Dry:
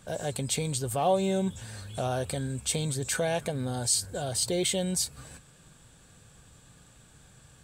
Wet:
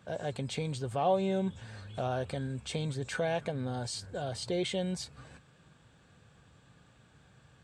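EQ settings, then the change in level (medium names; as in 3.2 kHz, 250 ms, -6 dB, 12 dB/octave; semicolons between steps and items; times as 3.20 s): high-pass 69 Hz; tape spacing loss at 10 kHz 25 dB; tilt shelf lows -3 dB; 0.0 dB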